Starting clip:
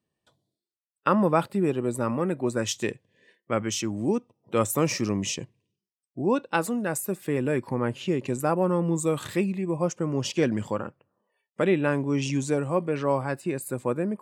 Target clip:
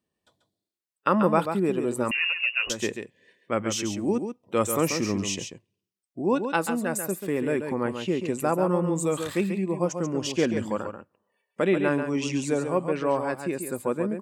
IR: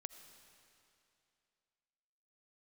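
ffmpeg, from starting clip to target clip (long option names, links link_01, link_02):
-filter_complex "[0:a]equalizer=frequency=130:width_type=o:width=0.4:gain=-9,asplit=2[link_01][link_02];[link_02]aecho=0:1:138:0.422[link_03];[link_01][link_03]amix=inputs=2:normalize=0,asettb=1/sr,asplit=3[link_04][link_05][link_06];[link_04]atrim=end=2.114[link_07];[link_05]atrim=start=2.11:end=2.7,asetpts=PTS-STARTPTS,afade=type=in:duration=0.004:curve=qsin,afade=type=out:start_time=0.586:duration=0.004:curve=qsin,lowpass=frequency=2600:width_type=q:width=0.5098,lowpass=frequency=2600:width_type=q:width=0.6013,lowpass=frequency=2600:width_type=q:width=0.9,lowpass=frequency=2600:width_type=q:width=2.563,afreqshift=-3000[link_08];[link_06]atrim=start=2.696[link_09];[link_07][link_08]acrossfade=duration=0.004:curve1=hsin:curve2=qsin[link_10];[link_10][link_09]acrossfade=duration=0.004:curve1=qsin:curve2=hsin"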